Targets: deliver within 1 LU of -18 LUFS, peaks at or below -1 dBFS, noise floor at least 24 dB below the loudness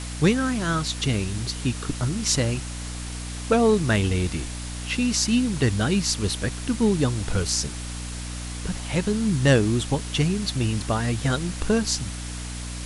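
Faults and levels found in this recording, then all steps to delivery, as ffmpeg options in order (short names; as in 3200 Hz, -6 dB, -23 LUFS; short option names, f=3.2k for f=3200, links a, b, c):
hum 60 Hz; harmonics up to 300 Hz; hum level -31 dBFS; noise floor -33 dBFS; noise floor target -49 dBFS; loudness -24.5 LUFS; peak -5.0 dBFS; loudness target -18.0 LUFS
-> -af "bandreject=f=60:t=h:w=6,bandreject=f=120:t=h:w=6,bandreject=f=180:t=h:w=6,bandreject=f=240:t=h:w=6,bandreject=f=300:t=h:w=6"
-af "afftdn=nr=16:nf=-33"
-af "volume=6.5dB,alimiter=limit=-1dB:level=0:latency=1"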